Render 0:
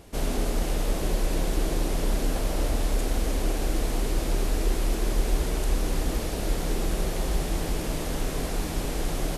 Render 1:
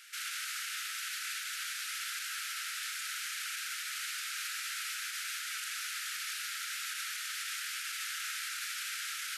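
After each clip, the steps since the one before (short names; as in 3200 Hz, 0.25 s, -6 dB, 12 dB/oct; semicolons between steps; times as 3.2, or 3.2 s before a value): Chebyshev high-pass 1300 Hz, order 8; high shelf 4900 Hz -6 dB; limiter -37 dBFS, peak gain reduction 7.5 dB; gain +7.5 dB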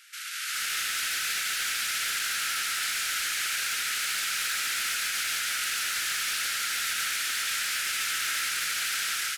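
AGC gain up to 9 dB; overloaded stage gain 26.5 dB; echo 0.141 s -4.5 dB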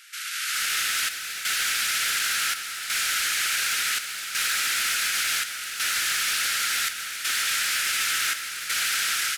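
chopper 0.69 Hz, depth 60%, duty 75%; gain +4.5 dB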